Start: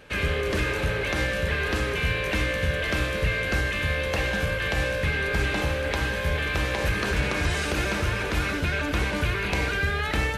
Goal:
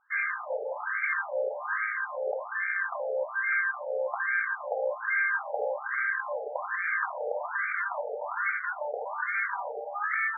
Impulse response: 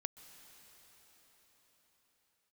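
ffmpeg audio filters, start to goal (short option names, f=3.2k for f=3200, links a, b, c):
-af "afwtdn=0.0282,afftfilt=real='re*between(b*sr/1024,600*pow(1700/600,0.5+0.5*sin(2*PI*1.2*pts/sr))/1.41,600*pow(1700/600,0.5+0.5*sin(2*PI*1.2*pts/sr))*1.41)':imag='im*between(b*sr/1024,600*pow(1700/600,0.5+0.5*sin(2*PI*1.2*pts/sr))/1.41,600*pow(1700/600,0.5+0.5*sin(2*PI*1.2*pts/sr))*1.41)':win_size=1024:overlap=0.75,volume=3.5dB"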